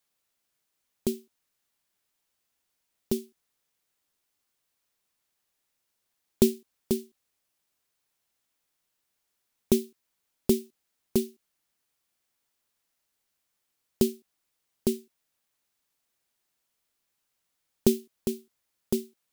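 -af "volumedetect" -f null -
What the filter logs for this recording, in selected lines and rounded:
mean_volume: -35.3 dB
max_volume: -5.6 dB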